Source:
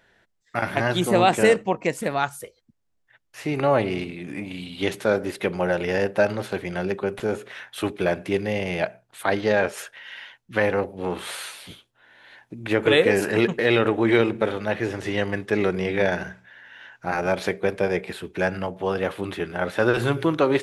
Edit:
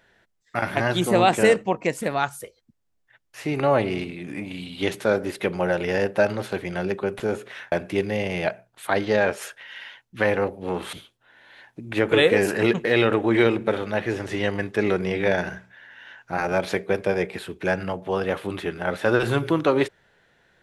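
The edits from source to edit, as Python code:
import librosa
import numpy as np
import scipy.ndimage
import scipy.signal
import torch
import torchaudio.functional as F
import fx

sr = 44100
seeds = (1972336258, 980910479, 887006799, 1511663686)

y = fx.edit(x, sr, fx.cut(start_s=7.72, length_s=0.36),
    fx.cut(start_s=11.29, length_s=0.38), tone=tone)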